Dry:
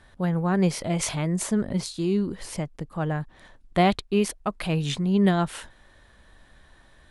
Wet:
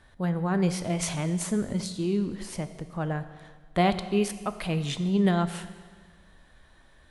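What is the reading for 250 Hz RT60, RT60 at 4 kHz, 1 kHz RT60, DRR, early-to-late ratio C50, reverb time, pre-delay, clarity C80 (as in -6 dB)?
1.6 s, 1.5 s, 1.6 s, 10.0 dB, 11.5 dB, 1.6 s, 11 ms, 12.5 dB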